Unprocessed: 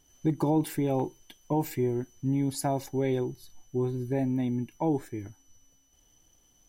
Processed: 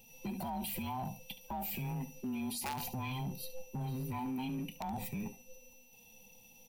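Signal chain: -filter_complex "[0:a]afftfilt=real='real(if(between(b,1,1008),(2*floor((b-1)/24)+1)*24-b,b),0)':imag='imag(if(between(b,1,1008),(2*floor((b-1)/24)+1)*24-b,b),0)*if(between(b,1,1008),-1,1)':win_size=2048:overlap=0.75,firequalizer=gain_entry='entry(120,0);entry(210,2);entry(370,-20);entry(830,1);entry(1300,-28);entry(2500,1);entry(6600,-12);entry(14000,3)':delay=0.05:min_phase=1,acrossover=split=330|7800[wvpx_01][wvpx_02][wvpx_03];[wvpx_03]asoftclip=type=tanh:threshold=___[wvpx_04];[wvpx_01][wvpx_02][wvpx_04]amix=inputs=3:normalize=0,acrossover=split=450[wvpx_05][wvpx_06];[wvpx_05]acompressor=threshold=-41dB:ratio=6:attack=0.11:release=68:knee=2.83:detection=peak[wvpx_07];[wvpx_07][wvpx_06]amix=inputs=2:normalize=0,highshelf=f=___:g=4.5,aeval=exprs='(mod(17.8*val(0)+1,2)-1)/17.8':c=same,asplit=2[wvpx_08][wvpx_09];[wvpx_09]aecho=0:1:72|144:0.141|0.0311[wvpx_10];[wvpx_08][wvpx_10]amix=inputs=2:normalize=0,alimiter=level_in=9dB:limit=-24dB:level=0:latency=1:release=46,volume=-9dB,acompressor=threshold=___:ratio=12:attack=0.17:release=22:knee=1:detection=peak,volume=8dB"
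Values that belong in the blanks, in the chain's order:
-37dB, 4500, -42dB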